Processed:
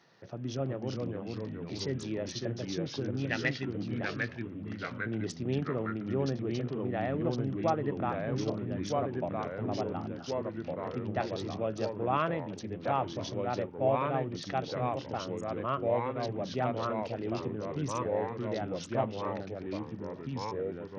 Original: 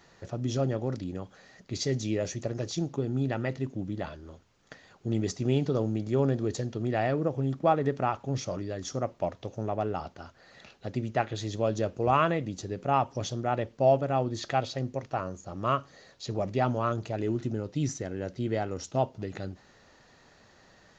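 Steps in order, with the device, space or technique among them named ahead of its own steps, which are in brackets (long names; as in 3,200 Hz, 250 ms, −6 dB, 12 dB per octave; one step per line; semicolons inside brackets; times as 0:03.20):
0:03.18–0:03.83: flat-topped bell 2,200 Hz +13.5 dB 1.3 octaves
delay with pitch and tempo change per echo 328 ms, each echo −2 semitones, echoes 3
Bluetooth headset (high-pass filter 110 Hz 24 dB per octave; downsampling to 16,000 Hz; level −5.5 dB; SBC 64 kbit/s 48,000 Hz)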